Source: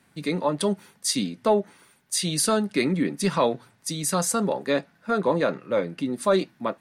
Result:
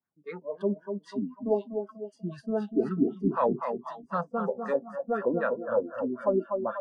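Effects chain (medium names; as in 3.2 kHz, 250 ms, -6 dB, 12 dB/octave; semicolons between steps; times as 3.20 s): two-band feedback delay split 1.5 kHz, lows 244 ms, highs 427 ms, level -6 dB; LFO low-pass sine 3.9 Hz 290–1600 Hz; spectral noise reduction 25 dB; trim -7.5 dB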